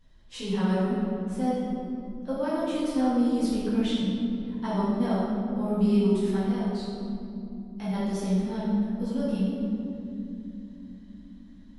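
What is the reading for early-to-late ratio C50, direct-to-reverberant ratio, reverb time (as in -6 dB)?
-2.5 dB, -11.5 dB, 3.0 s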